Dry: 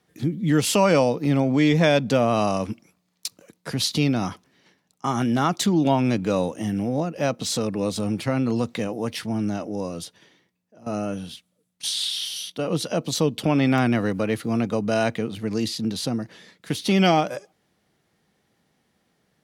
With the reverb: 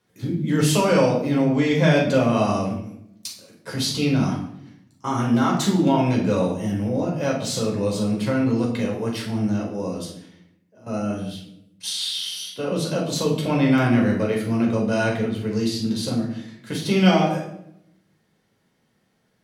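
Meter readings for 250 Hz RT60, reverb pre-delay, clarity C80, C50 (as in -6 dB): 1.1 s, 7 ms, 8.5 dB, 5.0 dB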